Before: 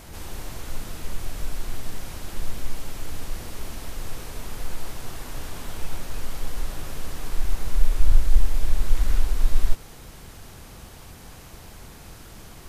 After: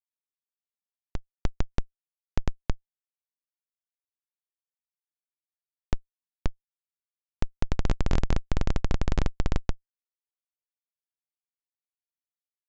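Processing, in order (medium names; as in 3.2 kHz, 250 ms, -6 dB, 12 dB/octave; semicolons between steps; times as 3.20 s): band-stop 2.2 kHz, Q 5.9; gated-style reverb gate 270 ms rising, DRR 11 dB; Schmitt trigger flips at -16 dBFS; resampled via 16 kHz; inverted gate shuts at -10 dBFS, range -32 dB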